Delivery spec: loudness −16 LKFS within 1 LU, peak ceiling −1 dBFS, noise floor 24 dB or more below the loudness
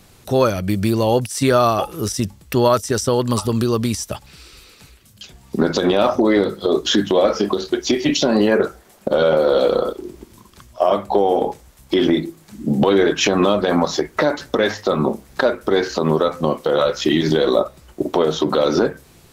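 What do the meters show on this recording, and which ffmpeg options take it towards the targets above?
integrated loudness −18.5 LKFS; sample peak −2.5 dBFS; target loudness −16.0 LKFS
→ -af "volume=2.5dB,alimiter=limit=-1dB:level=0:latency=1"

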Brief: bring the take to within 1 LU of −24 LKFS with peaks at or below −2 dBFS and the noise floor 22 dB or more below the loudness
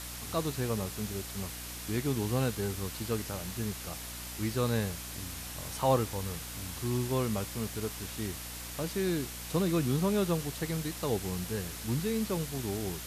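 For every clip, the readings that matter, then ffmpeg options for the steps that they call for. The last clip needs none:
mains hum 60 Hz; hum harmonics up to 300 Hz; level of the hum −45 dBFS; background noise floor −42 dBFS; target noise floor −56 dBFS; integrated loudness −33.5 LKFS; sample peak −15.0 dBFS; target loudness −24.0 LKFS
→ -af "bandreject=frequency=60:width_type=h:width=6,bandreject=frequency=120:width_type=h:width=6,bandreject=frequency=180:width_type=h:width=6,bandreject=frequency=240:width_type=h:width=6,bandreject=frequency=300:width_type=h:width=6"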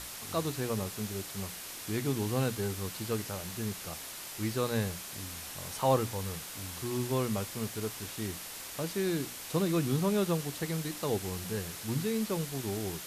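mains hum none found; background noise floor −43 dBFS; target noise floor −56 dBFS
→ -af "afftdn=noise_reduction=13:noise_floor=-43"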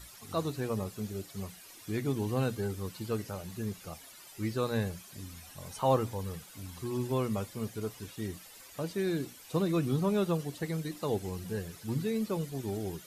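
background noise floor −52 dBFS; target noise floor −57 dBFS
→ -af "afftdn=noise_reduction=6:noise_floor=-52"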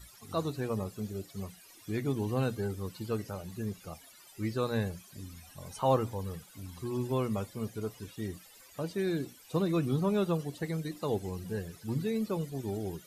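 background noise floor −56 dBFS; target noise floor −57 dBFS
→ -af "afftdn=noise_reduction=6:noise_floor=-56"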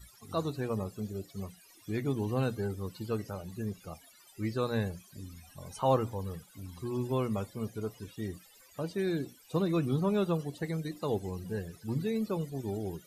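background noise floor −59 dBFS; integrated loudness −34.5 LKFS; sample peak −15.0 dBFS; target loudness −24.0 LKFS
→ -af "volume=10.5dB"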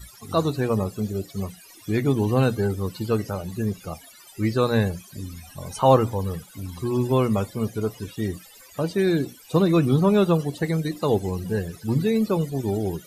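integrated loudness −24.0 LKFS; sample peak −4.5 dBFS; background noise floor −48 dBFS

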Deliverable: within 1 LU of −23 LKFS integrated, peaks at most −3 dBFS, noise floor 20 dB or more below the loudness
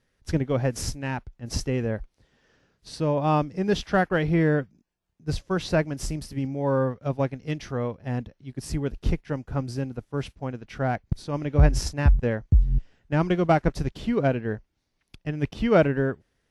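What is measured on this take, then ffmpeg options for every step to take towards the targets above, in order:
integrated loudness −26.5 LKFS; sample peak −5.0 dBFS; target loudness −23.0 LKFS
→ -af "volume=3.5dB,alimiter=limit=-3dB:level=0:latency=1"

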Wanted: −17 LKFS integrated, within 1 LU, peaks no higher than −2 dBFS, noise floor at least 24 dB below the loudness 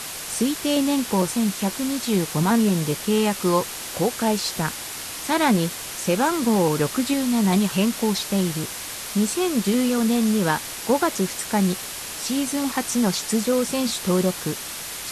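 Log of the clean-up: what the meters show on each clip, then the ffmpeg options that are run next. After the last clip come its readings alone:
background noise floor −33 dBFS; target noise floor −47 dBFS; integrated loudness −22.5 LKFS; sample peak −6.0 dBFS; target loudness −17.0 LKFS
→ -af "afftdn=noise_reduction=14:noise_floor=-33"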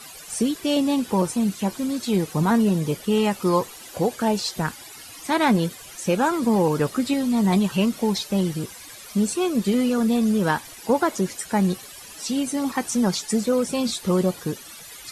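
background noise floor −42 dBFS; target noise floor −47 dBFS
→ -af "afftdn=noise_reduction=6:noise_floor=-42"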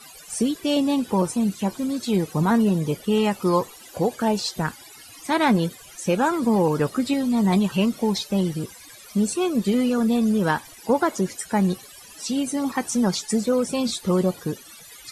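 background noise floor −45 dBFS; target noise floor −47 dBFS
→ -af "afftdn=noise_reduction=6:noise_floor=-45"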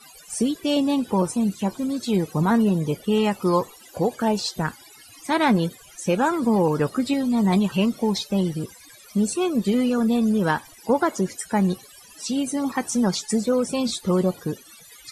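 background noise floor −48 dBFS; integrated loudness −23.0 LKFS; sample peak −7.0 dBFS; target loudness −17.0 LKFS
→ -af "volume=6dB,alimiter=limit=-2dB:level=0:latency=1"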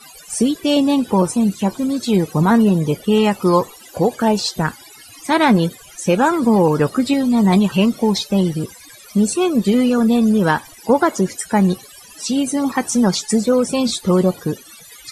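integrated loudness −17.0 LKFS; sample peak −2.0 dBFS; background noise floor −42 dBFS

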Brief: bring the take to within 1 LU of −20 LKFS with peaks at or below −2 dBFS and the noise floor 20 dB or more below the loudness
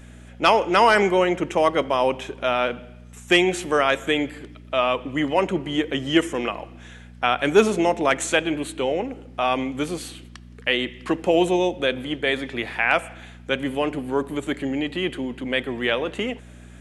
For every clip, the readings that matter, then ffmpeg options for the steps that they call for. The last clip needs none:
mains hum 60 Hz; hum harmonics up to 240 Hz; level of the hum −41 dBFS; integrated loudness −22.5 LKFS; sample peak −5.0 dBFS; target loudness −20.0 LKFS
→ -af "bandreject=frequency=60:width_type=h:width=4,bandreject=frequency=120:width_type=h:width=4,bandreject=frequency=180:width_type=h:width=4,bandreject=frequency=240:width_type=h:width=4"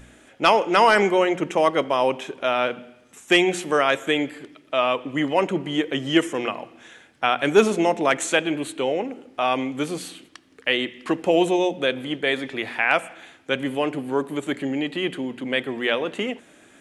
mains hum none found; integrated loudness −22.5 LKFS; sample peak −5.0 dBFS; target loudness −20.0 LKFS
→ -af "volume=2.5dB"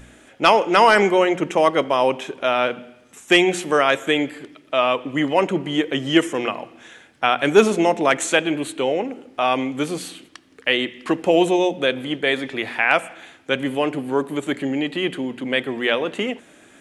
integrated loudness −20.0 LKFS; sample peak −2.5 dBFS; background noise floor −51 dBFS

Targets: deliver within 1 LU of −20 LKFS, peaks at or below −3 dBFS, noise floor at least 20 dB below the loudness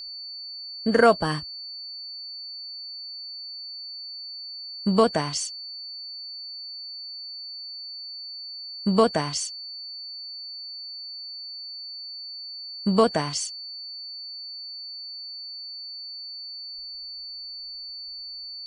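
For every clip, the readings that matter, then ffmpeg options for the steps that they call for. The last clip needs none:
interfering tone 4,500 Hz; level of the tone −35 dBFS; integrated loudness −29.0 LKFS; sample peak −5.0 dBFS; target loudness −20.0 LKFS
→ -af "bandreject=frequency=4500:width=30"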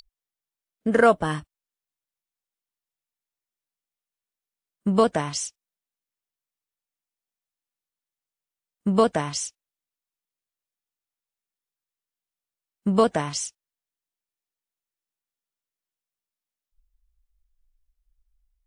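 interfering tone none found; integrated loudness −23.5 LKFS; sample peak −5.5 dBFS; target loudness −20.0 LKFS
→ -af "volume=3.5dB,alimiter=limit=-3dB:level=0:latency=1"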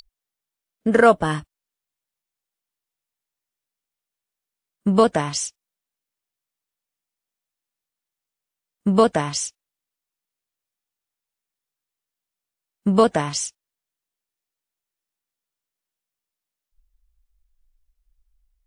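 integrated loudness −20.0 LKFS; sample peak −3.0 dBFS; background noise floor −87 dBFS

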